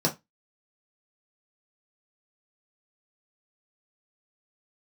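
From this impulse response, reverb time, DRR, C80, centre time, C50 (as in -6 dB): 0.20 s, -2.5 dB, 25.5 dB, 13 ms, 15.5 dB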